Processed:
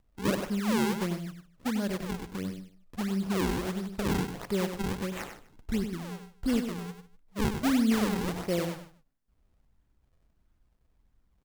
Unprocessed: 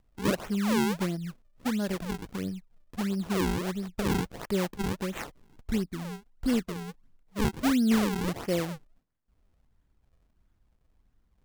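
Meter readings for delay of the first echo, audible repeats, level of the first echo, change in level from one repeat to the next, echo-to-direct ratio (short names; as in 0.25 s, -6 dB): 97 ms, 3, -8.0 dB, no steady repeat, -7.5 dB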